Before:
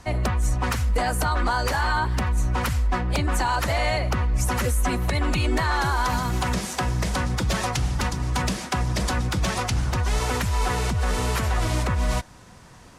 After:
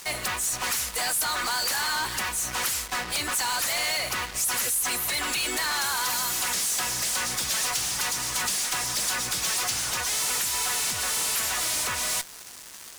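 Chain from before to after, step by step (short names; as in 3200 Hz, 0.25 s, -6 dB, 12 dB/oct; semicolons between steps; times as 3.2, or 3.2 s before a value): differentiator; in parallel at -9.5 dB: fuzz box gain 56 dB, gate -55 dBFS; on the sum: gain -4.5 dB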